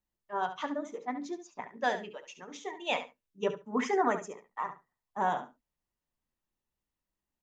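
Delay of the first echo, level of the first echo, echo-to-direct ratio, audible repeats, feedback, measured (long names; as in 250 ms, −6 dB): 70 ms, −11.0 dB, −11.0 dB, 2, 15%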